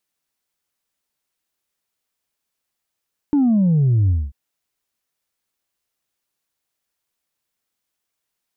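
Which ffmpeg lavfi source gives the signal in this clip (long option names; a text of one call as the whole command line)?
ffmpeg -f lavfi -i "aevalsrc='0.224*clip((0.99-t)/0.23,0,1)*tanh(1.12*sin(2*PI*300*0.99/log(65/300)*(exp(log(65/300)*t/0.99)-1)))/tanh(1.12)':duration=0.99:sample_rate=44100" out.wav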